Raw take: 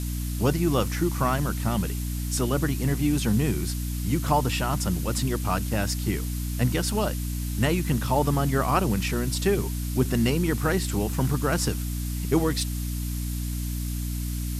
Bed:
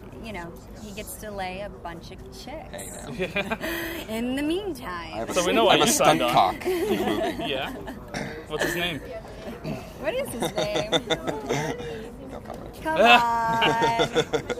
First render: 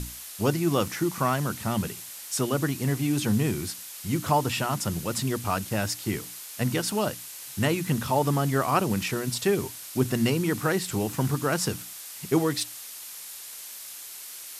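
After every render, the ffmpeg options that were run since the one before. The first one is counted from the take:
-af "bandreject=f=60:t=h:w=6,bandreject=f=120:t=h:w=6,bandreject=f=180:t=h:w=6,bandreject=f=240:t=h:w=6,bandreject=f=300:t=h:w=6"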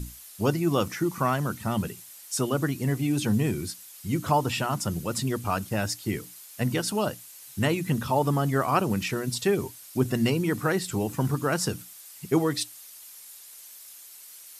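-af "afftdn=nr=9:nf=-41"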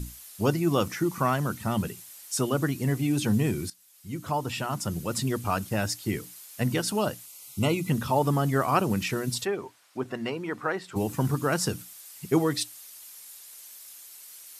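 -filter_complex "[0:a]asettb=1/sr,asplit=3[a][b][c];[a]atrim=end=7.264[d];[b]atrim=start=7.26:end=7.9,asetpts=PTS-STARTPTS,afade=t=in:d=0.004:c=qsin,afade=t=out:st=0.636:d=0.004:c=qsin,asuperstop=centerf=1700:order=20:qfactor=3.5[e];[c]atrim=start=7.896[f];[d][e]acrossfade=d=0.004:c1=hsin:c2=qsin[g];[g][f]acrossfade=d=0.004:c1=qsin:c2=hsin,asplit=3[h][i][j];[h]afade=t=out:st=9.44:d=0.02[k];[i]bandpass=f=1k:t=q:w=0.71,afade=t=in:st=9.44:d=0.02,afade=t=out:st=10.95:d=0.02[l];[j]afade=t=in:st=10.95:d=0.02[m];[k][l][m]amix=inputs=3:normalize=0,asplit=2[n][o];[n]atrim=end=3.7,asetpts=PTS-STARTPTS,afade=t=out:st=3.696:d=0.004:c=hsin:silence=0.158489[p];[o]atrim=start=3.7,asetpts=PTS-STARTPTS,afade=t=in:d=1.5:silence=0.158489[q];[p][q]concat=n=2:v=0:a=1"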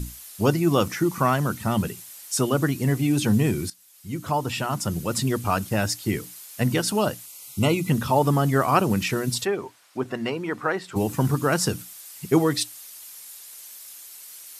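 -af "volume=4dB"

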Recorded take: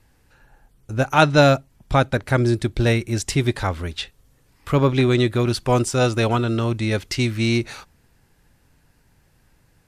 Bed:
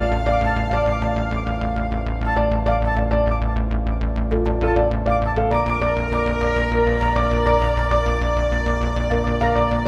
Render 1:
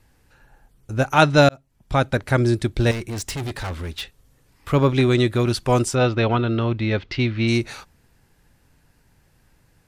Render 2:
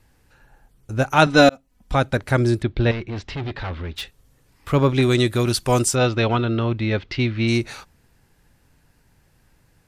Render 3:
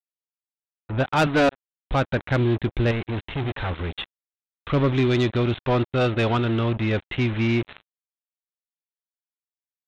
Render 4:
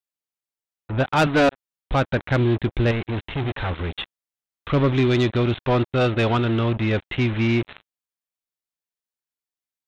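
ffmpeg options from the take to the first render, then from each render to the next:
-filter_complex "[0:a]asettb=1/sr,asplit=3[a][b][c];[a]atrim=end=2.914[d];[b]atrim=start=2.91:end=4.73,asetpts=PTS-STARTPTS,afade=t=in:d=0.004:c=qsin,afade=t=out:st=1.816:d=0.004:c=qsin,asoftclip=type=hard:threshold=-25.5dB[e];[c]atrim=start=4.726[f];[d][e]acrossfade=d=0.004:c1=hsin:c2=qsin[g];[g][f]acrossfade=d=0.004:c1=qsin:c2=hsin,asplit=3[h][i][j];[h]afade=t=out:st=5.94:d=0.02[k];[i]lowpass=f=4k:w=0.5412,lowpass=f=4k:w=1.3066,afade=t=in:st=5.94:d=0.02,afade=t=out:st=7.47:d=0.02[l];[j]afade=t=in:st=7.47:d=0.02[m];[k][l][m]amix=inputs=3:normalize=0,asplit=2[n][o];[n]atrim=end=1.49,asetpts=PTS-STARTPTS,afade=t=out:st=1.486:d=0.004:c=hsin[p];[o]atrim=start=1.49,asetpts=PTS-STARTPTS,afade=t=in:d=0.62[q];[p][q]concat=n=2:v=0:a=1"
-filter_complex "[0:a]asettb=1/sr,asplit=3[a][b][c];[a]atrim=end=1.264[d];[b]atrim=start=1.26:end=1.95,asetpts=PTS-STARTPTS,afade=t=in:d=0.004:c=qsin,afade=t=out:st=0.686:d=0.004:c=qsin,aecho=1:1:4:0.81,atrim=end_sample=30429[e];[c]atrim=start=1.946[f];[d][e]acrossfade=d=0.004:c1=hsin:c2=qsin[g];[g][f]acrossfade=d=0.004:c1=qsin:c2=hsin,asplit=3[h][i][j];[h]afade=t=out:st=2.61:d=0.02[k];[i]lowpass=f=4k:w=0.5412,lowpass=f=4k:w=1.3066,afade=t=in:st=2.61:d=0.02,afade=t=out:st=3.95:d=0.02[l];[j]afade=t=in:st=3.95:d=0.02[m];[k][l][m]amix=inputs=3:normalize=0,asettb=1/sr,asplit=3[n][o][p];[n]atrim=end=5.024[q];[o]atrim=start=5.02:end=6.45,asetpts=PTS-STARTPTS,afade=t=in:d=0.004:c=qsin,afade=t=out:st=1.426:d=0.004:c=qsin,aemphasis=mode=production:type=cd[r];[p]atrim=start=6.446[s];[q][r]acrossfade=d=0.004:c1=hsin:c2=qsin[t];[t][s]acrossfade=d=0.004:c1=qsin:c2=hsin"
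-af "aresample=8000,acrusher=bits=4:mix=0:aa=0.5,aresample=44100,asoftclip=type=tanh:threshold=-14dB"
-af "volume=1.5dB"

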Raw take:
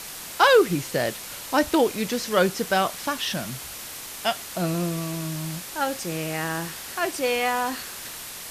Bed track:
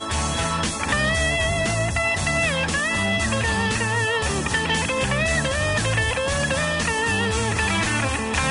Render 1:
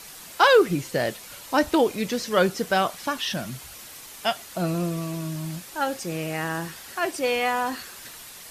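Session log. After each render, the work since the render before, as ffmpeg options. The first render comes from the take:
-af "afftdn=nr=7:nf=-38"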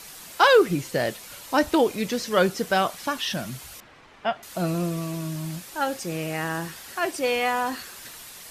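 -filter_complex "[0:a]asettb=1/sr,asplit=3[a][b][c];[a]atrim=end=3.804[d];[b]atrim=start=3.8:end=4.43,asetpts=PTS-STARTPTS,afade=t=in:d=0.004:c=qsin,afade=t=out:st=0.626:d=0.004:c=qsin,lowpass=2k[e];[c]atrim=start=4.426[f];[d][e]acrossfade=d=0.004:c1=hsin:c2=qsin[g];[g][f]acrossfade=d=0.004:c1=qsin:c2=hsin"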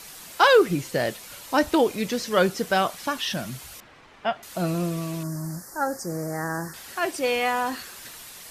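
-filter_complex "[0:a]asettb=1/sr,asplit=3[a][b][c];[a]atrim=end=5.234[d];[b]atrim=start=5.23:end=6.74,asetpts=PTS-STARTPTS,afade=t=in:d=0.004:c=qsin,afade=t=out:st=1.506:d=0.004:c=qsin,asuperstop=centerf=3000:order=8:qfactor=1[e];[c]atrim=start=6.736[f];[d][e]acrossfade=d=0.004:c1=hsin:c2=qsin[g];[g][f]acrossfade=d=0.004:c1=qsin:c2=hsin"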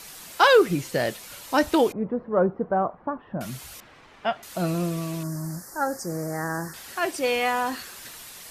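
-filter_complex "[0:a]asettb=1/sr,asplit=3[a][b][c];[a]atrim=end=1.924[d];[b]atrim=start=1.92:end=3.41,asetpts=PTS-STARTPTS,afade=t=in:d=0.004:c=qsin,afade=t=out:st=1.486:d=0.004:c=qsin,lowpass=f=1.1k:w=0.5412,lowpass=f=1.1k:w=1.3066[e];[c]atrim=start=3.406[f];[d][e]acrossfade=d=0.004:c1=hsin:c2=qsin[g];[g][f]acrossfade=d=0.004:c1=qsin:c2=hsin"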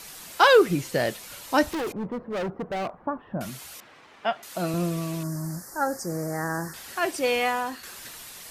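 -filter_complex "[0:a]asettb=1/sr,asplit=3[a][b][c];[a]atrim=end=1.654[d];[b]atrim=start=1.65:end=2.94,asetpts=PTS-STARTPTS,afade=t=in:d=0.004:c=qsin,afade=t=out:st=1.286:d=0.004:c=qsin,asoftclip=type=hard:threshold=-27dB[e];[c]atrim=start=2.936[f];[d][e]acrossfade=d=0.004:c1=hsin:c2=qsin[g];[g][f]acrossfade=d=0.004:c1=qsin:c2=hsin,asettb=1/sr,asplit=3[h][i][j];[h]atrim=end=3.494[k];[i]atrim=start=3.49:end=4.74,asetpts=PTS-STARTPTS,afade=t=in:d=0.004:c=qsin,afade=t=out:st=1.246:d=0.004:c=qsin,highpass=f=230:p=1[l];[j]atrim=start=4.736[m];[k][l]acrossfade=d=0.004:c1=hsin:c2=qsin[n];[n][m]acrossfade=d=0.004:c1=qsin:c2=hsin,asplit=2[o][p];[o]atrim=end=7.83,asetpts=PTS-STARTPTS,afade=t=out:st=7.41:d=0.42:silence=0.398107[q];[p]atrim=start=7.83,asetpts=PTS-STARTPTS,afade=t=in:d=0.004:c=hsin:silence=0.398107[r];[q][r]concat=n=2:v=0:a=1"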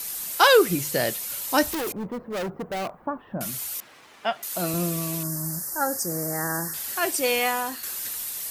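-af "aemphasis=mode=production:type=50fm,bandreject=f=50:t=h:w=6,bandreject=f=100:t=h:w=6,bandreject=f=150:t=h:w=6"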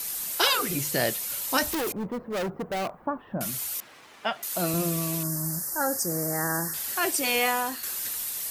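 -af "afftfilt=real='re*lt(hypot(re,im),0.631)':imag='im*lt(hypot(re,im),0.631)':win_size=1024:overlap=0.75"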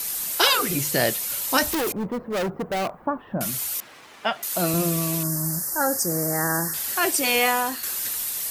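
-af "volume=4dB"

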